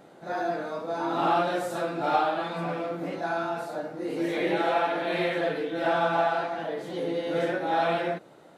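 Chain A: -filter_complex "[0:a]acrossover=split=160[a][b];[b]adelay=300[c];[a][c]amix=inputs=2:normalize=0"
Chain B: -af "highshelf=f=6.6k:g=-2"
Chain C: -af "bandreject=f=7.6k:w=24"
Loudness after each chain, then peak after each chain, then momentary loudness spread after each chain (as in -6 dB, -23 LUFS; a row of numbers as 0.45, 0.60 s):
-28.0, -28.0, -28.0 LUFS; -12.0, -11.5, -11.5 dBFS; 8, 8, 8 LU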